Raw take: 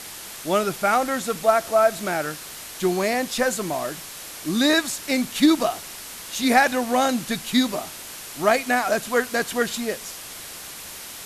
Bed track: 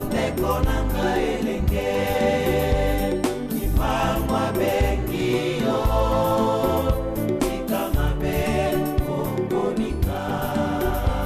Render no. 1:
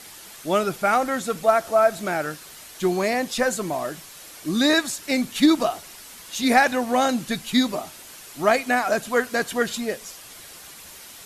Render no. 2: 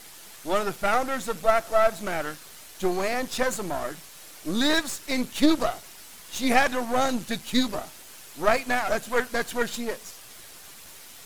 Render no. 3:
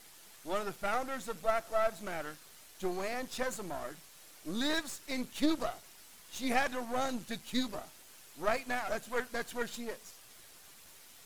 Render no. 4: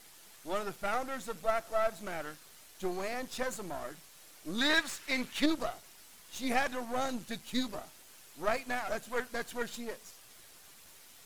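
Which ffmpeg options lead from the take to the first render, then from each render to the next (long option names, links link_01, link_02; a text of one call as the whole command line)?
ffmpeg -i in.wav -af "afftdn=noise_reduction=7:noise_floor=-38" out.wav
ffmpeg -i in.wav -af "aeval=exprs='if(lt(val(0),0),0.251*val(0),val(0))':channel_layout=same" out.wav
ffmpeg -i in.wav -af "volume=-10dB" out.wav
ffmpeg -i in.wav -filter_complex "[0:a]asettb=1/sr,asplit=3[link_01][link_02][link_03];[link_01]atrim=end=4.584[link_04];[link_02]atrim=start=4.58:end=5.46,asetpts=PTS-STARTPTS,afade=type=in:duration=0.004:curve=qsin,afade=type=out:start_time=0.876:duration=0.004:curve=qsin,equalizer=frequency=2000:width_type=o:width=2.2:gain=9[link_05];[link_03]atrim=start=5.456[link_06];[link_04][link_05]acrossfade=duration=0.004:curve1=hsin:curve2=qsin[link_07];[link_07][link_06]acrossfade=duration=0.004:curve1=qsin:curve2=hsin" out.wav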